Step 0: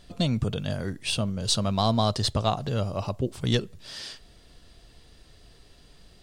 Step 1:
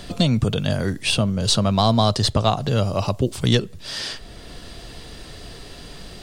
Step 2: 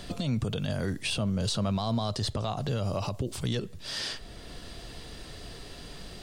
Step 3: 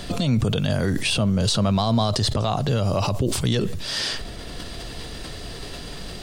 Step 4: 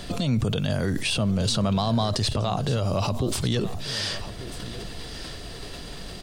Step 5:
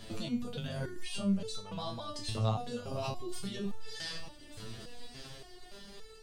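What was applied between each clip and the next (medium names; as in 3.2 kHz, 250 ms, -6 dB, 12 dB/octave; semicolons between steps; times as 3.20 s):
three bands compressed up and down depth 40%; trim +7 dB
peak limiter -16 dBFS, peak gain reduction 11 dB; trim -5 dB
decay stretcher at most 37 dB/s; trim +8 dB
delay 1192 ms -14 dB; trim -3 dB
resonator arpeggio 3.5 Hz 110–440 Hz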